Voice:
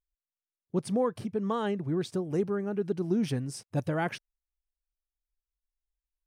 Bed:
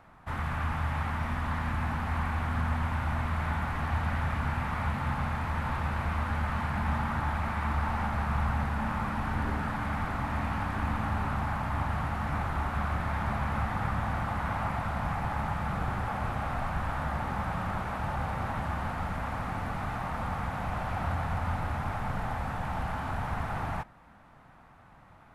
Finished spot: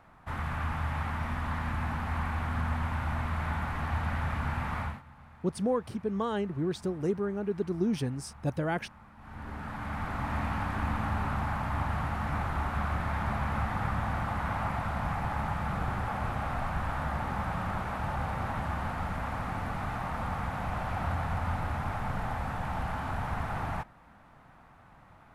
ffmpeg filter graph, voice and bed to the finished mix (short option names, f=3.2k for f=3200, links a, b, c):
-filter_complex "[0:a]adelay=4700,volume=-1dB[a];[1:a]volume=20dB,afade=t=out:st=4.79:d=0.23:silence=0.0944061,afade=t=in:st=9.17:d=1.16:silence=0.0841395[b];[a][b]amix=inputs=2:normalize=0"